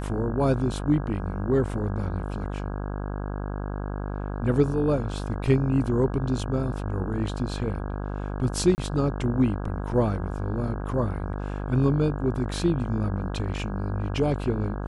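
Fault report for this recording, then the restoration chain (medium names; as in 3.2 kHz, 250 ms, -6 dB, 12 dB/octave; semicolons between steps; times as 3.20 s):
buzz 50 Hz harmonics 33 -31 dBFS
8.75–8.78 s: dropout 29 ms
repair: de-hum 50 Hz, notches 33; interpolate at 8.75 s, 29 ms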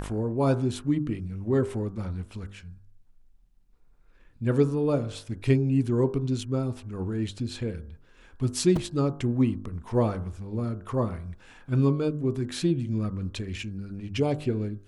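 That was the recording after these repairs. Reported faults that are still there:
nothing left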